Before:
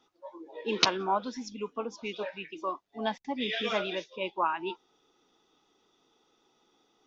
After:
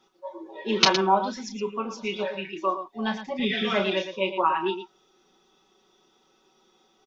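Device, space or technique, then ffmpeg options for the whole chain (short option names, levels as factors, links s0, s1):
slapback doubling: -filter_complex "[0:a]asettb=1/sr,asplit=3[s0][s1][s2];[s0]atrim=end=3.394[s3];[s1]atrim=start=3.39:end=3.8,asetpts=PTS-STARTPTS,afade=t=in:d=0.004:c=qsin,afade=t=out:st=0.406:d=0.004:c=qsin,bass=f=250:g=6,treble=f=4000:g=-8[s4];[s2]atrim=start=3.796[s5];[s3][s4]acrossfade=d=0.004:c1=hsin:c2=qsin[s6];[s6][s5]acrossfade=d=0.004:c1=qsin:c2=hsin,aecho=1:1:5.3:0.88,asplit=3[s7][s8][s9];[s8]adelay=31,volume=0.376[s10];[s9]adelay=114,volume=0.316[s11];[s7][s10][s11]amix=inputs=3:normalize=0,volume=1.33"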